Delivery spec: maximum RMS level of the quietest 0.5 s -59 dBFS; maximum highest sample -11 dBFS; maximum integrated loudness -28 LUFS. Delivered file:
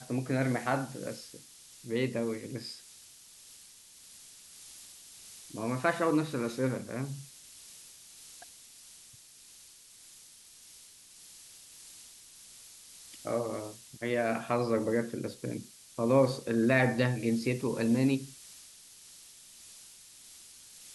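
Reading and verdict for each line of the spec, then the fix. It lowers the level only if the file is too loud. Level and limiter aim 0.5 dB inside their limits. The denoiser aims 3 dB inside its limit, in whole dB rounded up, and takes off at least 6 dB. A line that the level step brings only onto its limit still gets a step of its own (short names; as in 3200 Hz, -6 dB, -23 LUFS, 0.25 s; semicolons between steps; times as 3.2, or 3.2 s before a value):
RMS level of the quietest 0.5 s -55 dBFS: fail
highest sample -11.5 dBFS: OK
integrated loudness -31.0 LUFS: OK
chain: denoiser 7 dB, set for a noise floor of -55 dBFS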